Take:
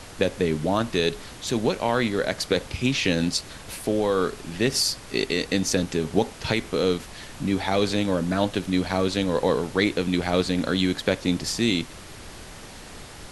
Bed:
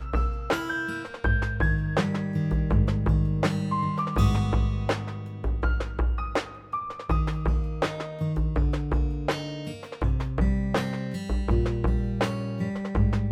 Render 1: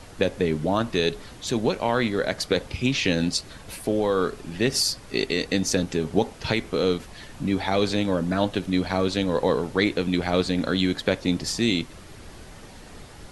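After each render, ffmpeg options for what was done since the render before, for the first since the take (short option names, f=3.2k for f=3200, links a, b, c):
-af "afftdn=nr=6:nf=-42"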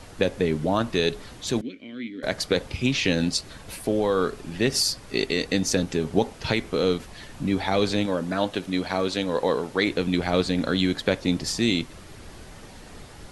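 -filter_complex "[0:a]asettb=1/sr,asplit=3[a][b][c];[a]atrim=end=1.614[d];[b]atrim=start=1.61:end=2.23,asetpts=PTS-STARTPTS,afade=t=in:d=0.004:c=qsin,afade=t=out:st=0.616:d=0.004:c=qsin,asplit=3[e][f][g];[e]bandpass=f=270:t=q:w=8,volume=0dB[h];[f]bandpass=f=2.29k:t=q:w=8,volume=-6dB[i];[g]bandpass=f=3.01k:t=q:w=8,volume=-9dB[j];[h][i][j]amix=inputs=3:normalize=0[k];[c]atrim=start=2.226[l];[d][k]acrossfade=d=0.004:c1=hsin:c2=qsin[m];[m][l]acrossfade=d=0.004:c1=qsin:c2=hsin,asettb=1/sr,asplit=3[n][o][p];[n]atrim=end=8.064[q];[o]atrim=start=8.06:end=9.88,asetpts=PTS-STARTPTS,afade=t=in:d=0.004:c=qsin,afade=t=out:st=1.816:d=0.004:c=qsin,lowshelf=f=160:g=-10.5[r];[p]atrim=start=9.876[s];[q][r]acrossfade=d=0.004:c1=hsin:c2=qsin[t];[t][s]acrossfade=d=0.004:c1=qsin:c2=hsin"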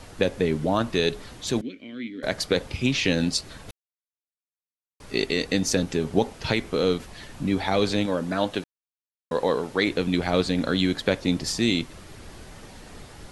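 -filter_complex "[0:a]asplit=5[a][b][c][d][e];[a]atrim=end=3.71,asetpts=PTS-STARTPTS,afade=t=out:st=3.706:d=0.004:c=hsin[f];[b]atrim=start=3.71:end=5,asetpts=PTS-STARTPTS,volume=0[g];[c]atrim=start=5:end=8.64,asetpts=PTS-STARTPTS,afade=t=in:d=0.004:c=hsin,afade=t=out:st=3.636:d=0.004:c=hsin[h];[d]atrim=start=8.64:end=9.31,asetpts=PTS-STARTPTS,volume=0[i];[e]atrim=start=9.31,asetpts=PTS-STARTPTS,afade=t=in:d=0.004:c=hsin[j];[f][g][h][i][j]concat=n=5:v=0:a=1"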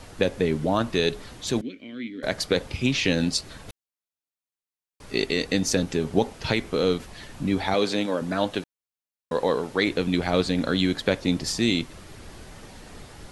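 -filter_complex "[0:a]asettb=1/sr,asplit=3[a][b][c];[a]atrim=end=7.744[d];[b]atrim=start=7.74:end=8.22,asetpts=PTS-STARTPTS,afade=t=in:d=0.004:c=qsin,afade=t=out:st=0.476:d=0.004:c=qsin,highpass=200[e];[c]atrim=start=8.216[f];[d][e]acrossfade=d=0.004:c1=hsin:c2=qsin[g];[g][f]acrossfade=d=0.004:c1=qsin:c2=hsin"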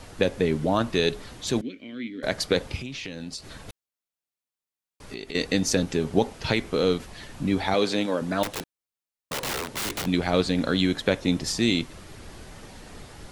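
-filter_complex "[0:a]asettb=1/sr,asplit=3[a][b][c];[a]atrim=end=2.804[d];[b]atrim=start=2.8:end=5.35,asetpts=PTS-STARTPTS,afade=t=in:d=0.004:c=qsin,afade=t=out:st=2.546:d=0.004:c=qsin,acompressor=threshold=-33dB:ratio=5:attack=3.2:release=140:knee=1:detection=peak[e];[c]atrim=start=5.346[f];[d][e]acrossfade=d=0.004:c1=hsin:c2=qsin[g];[g][f]acrossfade=d=0.004:c1=qsin:c2=hsin,asettb=1/sr,asplit=3[h][i][j];[h]atrim=end=8.434[k];[i]atrim=start=8.43:end=10.06,asetpts=PTS-STARTPTS,afade=t=in:d=0.004:c=qsin,afade=t=out:st=1.626:d=0.004:c=qsin,aeval=exprs='(mod(16.8*val(0)+1,2)-1)/16.8':c=same[l];[j]atrim=start=10.056[m];[k][l]acrossfade=d=0.004:c1=hsin:c2=qsin[n];[n][m]acrossfade=d=0.004:c1=qsin:c2=hsin,asettb=1/sr,asplit=3[o][p][q];[o]atrim=end=10.824[r];[p]atrim=start=10.82:end=11.5,asetpts=PTS-STARTPTS,afade=t=in:d=0.004:c=qsin,afade=t=out:st=0.676:d=0.004:c=qsin,bandreject=f=4.6k:w=12[s];[q]atrim=start=11.496[t];[r][s]acrossfade=d=0.004:c1=hsin:c2=qsin[u];[u][t]acrossfade=d=0.004:c1=qsin:c2=hsin"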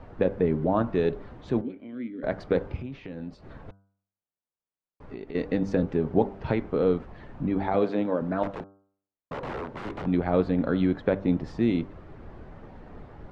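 -af "lowpass=1.2k,bandreject=f=98.03:t=h:w=4,bandreject=f=196.06:t=h:w=4,bandreject=f=294.09:t=h:w=4,bandreject=f=392.12:t=h:w=4,bandreject=f=490.15:t=h:w=4,bandreject=f=588.18:t=h:w=4,bandreject=f=686.21:t=h:w=4,bandreject=f=784.24:t=h:w=4,bandreject=f=882.27:t=h:w=4,bandreject=f=980.3:t=h:w=4,bandreject=f=1.07833k:t=h:w=4,bandreject=f=1.17636k:t=h:w=4,bandreject=f=1.27439k:t=h:w=4,bandreject=f=1.37242k:t=h:w=4,bandreject=f=1.47045k:t=h:w=4,bandreject=f=1.56848k:t=h:w=4"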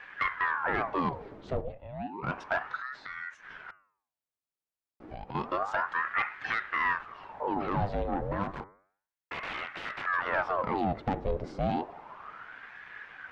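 -af "asoftclip=type=tanh:threshold=-19.5dB,aeval=exprs='val(0)*sin(2*PI*970*n/s+970*0.75/0.31*sin(2*PI*0.31*n/s))':c=same"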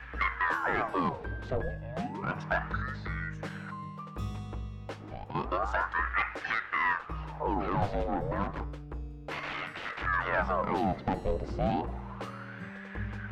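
-filter_complex "[1:a]volume=-15dB[a];[0:a][a]amix=inputs=2:normalize=0"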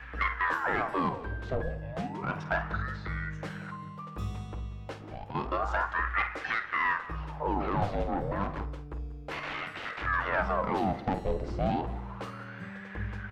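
-filter_complex "[0:a]asplit=2[a][b];[b]adelay=50,volume=-12dB[c];[a][c]amix=inputs=2:normalize=0,aecho=1:1:186:0.133"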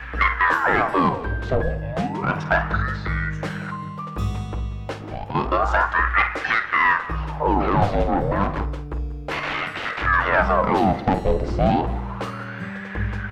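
-af "volume=10.5dB"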